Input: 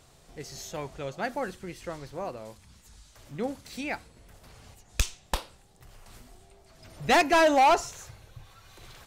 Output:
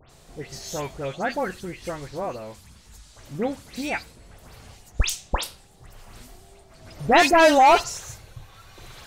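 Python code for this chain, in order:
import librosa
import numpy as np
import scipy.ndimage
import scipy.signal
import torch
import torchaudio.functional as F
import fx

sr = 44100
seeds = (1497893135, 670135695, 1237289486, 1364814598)

y = fx.dispersion(x, sr, late='highs', ms=103.0, hz=2800.0)
y = y * librosa.db_to_amplitude(5.5)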